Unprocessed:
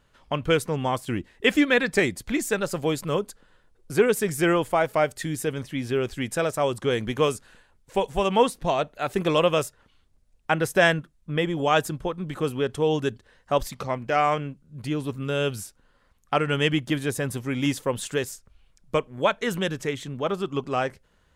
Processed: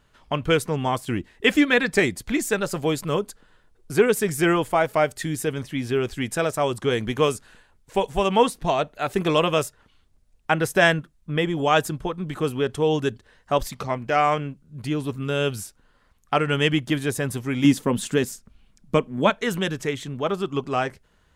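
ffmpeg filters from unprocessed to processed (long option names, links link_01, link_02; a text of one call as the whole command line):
ffmpeg -i in.wav -filter_complex "[0:a]asettb=1/sr,asplit=3[link_01][link_02][link_03];[link_01]atrim=end=17.644[link_04];[link_02]atrim=start=17.64:end=19.3,asetpts=PTS-STARTPTS,afade=type=in:duration=0.004:curve=qsin,afade=type=out:start_time=1.656:duration=0.004:curve=qsin,equalizer=frequency=220:width=1.5:gain=11.5[link_05];[link_03]atrim=start=19.296[link_06];[link_04][link_05]acrossfade=duration=0.004:curve1=hsin:curve2=qsin[link_07];[link_07][link_06]acrossfade=duration=0.004:curve1=qsin:curve2=hsin,bandreject=frequency=530:width=12,volume=2dB" out.wav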